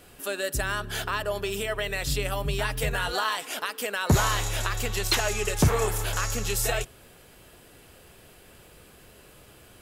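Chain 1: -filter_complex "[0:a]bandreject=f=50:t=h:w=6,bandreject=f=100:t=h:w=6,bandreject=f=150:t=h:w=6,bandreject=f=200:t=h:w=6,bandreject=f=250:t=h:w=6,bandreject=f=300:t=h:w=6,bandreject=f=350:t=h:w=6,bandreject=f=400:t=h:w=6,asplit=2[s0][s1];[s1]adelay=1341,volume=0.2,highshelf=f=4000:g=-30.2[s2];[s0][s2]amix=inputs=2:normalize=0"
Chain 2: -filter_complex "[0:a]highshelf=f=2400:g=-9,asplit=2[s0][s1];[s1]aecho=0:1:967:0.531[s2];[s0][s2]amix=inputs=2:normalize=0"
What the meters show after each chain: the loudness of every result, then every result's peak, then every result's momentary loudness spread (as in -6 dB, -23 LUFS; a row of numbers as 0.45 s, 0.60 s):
-27.5 LUFS, -29.0 LUFS; -11.5 dBFS, -10.5 dBFS; 21 LU, 11 LU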